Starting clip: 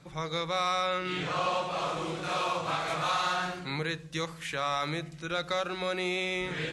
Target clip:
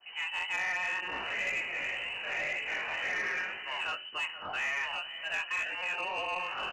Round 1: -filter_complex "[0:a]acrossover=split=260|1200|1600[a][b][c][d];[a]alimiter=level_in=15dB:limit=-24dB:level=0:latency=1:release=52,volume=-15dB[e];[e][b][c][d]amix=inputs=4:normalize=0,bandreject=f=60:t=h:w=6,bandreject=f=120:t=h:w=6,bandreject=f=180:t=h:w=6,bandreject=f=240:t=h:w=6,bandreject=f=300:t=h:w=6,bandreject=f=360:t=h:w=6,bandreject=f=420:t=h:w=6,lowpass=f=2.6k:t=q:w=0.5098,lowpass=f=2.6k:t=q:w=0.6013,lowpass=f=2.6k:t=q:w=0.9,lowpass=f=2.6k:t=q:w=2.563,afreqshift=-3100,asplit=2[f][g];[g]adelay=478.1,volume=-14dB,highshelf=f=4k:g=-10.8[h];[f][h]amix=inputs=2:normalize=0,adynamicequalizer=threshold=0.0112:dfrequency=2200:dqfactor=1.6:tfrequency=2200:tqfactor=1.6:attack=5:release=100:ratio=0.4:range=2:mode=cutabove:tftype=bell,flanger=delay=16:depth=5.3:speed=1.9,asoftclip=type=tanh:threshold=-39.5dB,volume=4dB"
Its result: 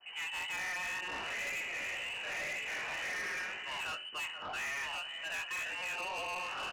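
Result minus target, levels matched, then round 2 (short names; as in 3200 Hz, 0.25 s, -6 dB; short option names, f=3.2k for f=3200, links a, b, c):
soft clip: distortion +9 dB
-filter_complex "[0:a]acrossover=split=260|1200|1600[a][b][c][d];[a]alimiter=level_in=15dB:limit=-24dB:level=0:latency=1:release=52,volume=-15dB[e];[e][b][c][d]amix=inputs=4:normalize=0,bandreject=f=60:t=h:w=6,bandreject=f=120:t=h:w=6,bandreject=f=180:t=h:w=6,bandreject=f=240:t=h:w=6,bandreject=f=300:t=h:w=6,bandreject=f=360:t=h:w=6,bandreject=f=420:t=h:w=6,lowpass=f=2.6k:t=q:w=0.5098,lowpass=f=2.6k:t=q:w=0.6013,lowpass=f=2.6k:t=q:w=0.9,lowpass=f=2.6k:t=q:w=2.563,afreqshift=-3100,asplit=2[f][g];[g]adelay=478.1,volume=-14dB,highshelf=f=4k:g=-10.8[h];[f][h]amix=inputs=2:normalize=0,adynamicequalizer=threshold=0.0112:dfrequency=2200:dqfactor=1.6:tfrequency=2200:tqfactor=1.6:attack=5:release=100:ratio=0.4:range=2:mode=cutabove:tftype=bell,flanger=delay=16:depth=5.3:speed=1.9,asoftclip=type=tanh:threshold=-30dB,volume=4dB"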